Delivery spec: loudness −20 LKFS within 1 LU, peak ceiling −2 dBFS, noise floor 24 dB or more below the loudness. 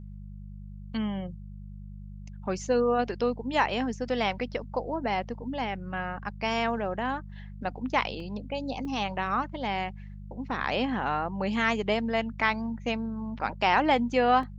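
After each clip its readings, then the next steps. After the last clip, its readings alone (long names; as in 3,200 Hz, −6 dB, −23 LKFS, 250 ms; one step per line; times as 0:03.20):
number of dropouts 3; longest dropout 2.5 ms; mains hum 50 Hz; hum harmonics up to 200 Hz; level of the hum −39 dBFS; integrated loudness −29.0 LKFS; sample peak −9.0 dBFS; target loudness −20.0 LKFS
→ repair the gap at 0:08.20/0:08.85/0:14.43, 2.5 ms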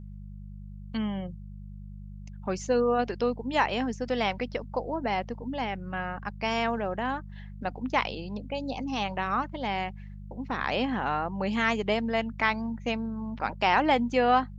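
number of dropouts 0; mains hum 50 Hz; hum harmonics up to 200 Hz; level of the hum −39 dBFS
→ hum removal 50 Hz, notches 4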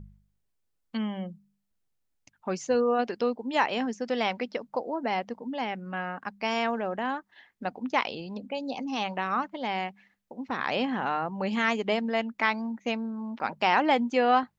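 mains hum none found; integrated loudness −29.5 LKFS; sample peak −9.5 dBFS; target loudness −20.0 LKFS
→ level +9.5 dB
brickwall limiter −2 dBFS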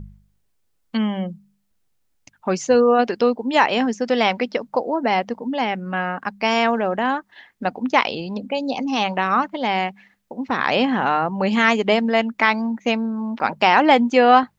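integrated loudness −20.0 LKFS; sample peak −2.0 dBFS; background noise floor −67 dBFS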